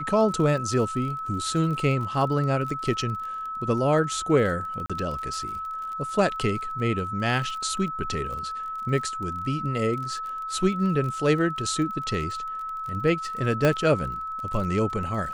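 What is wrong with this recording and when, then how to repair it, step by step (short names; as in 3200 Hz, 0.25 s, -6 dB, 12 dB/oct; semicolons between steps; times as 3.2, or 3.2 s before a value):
crackle 31/s -33 dBFS
tone 1300 Hz -30 dBFS
4.86–4.9 gap 36 ms
13.65 pop -9 dBFS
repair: de-click; notch 1300 Hz, Q 30; interpolate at 4.86, 36 ms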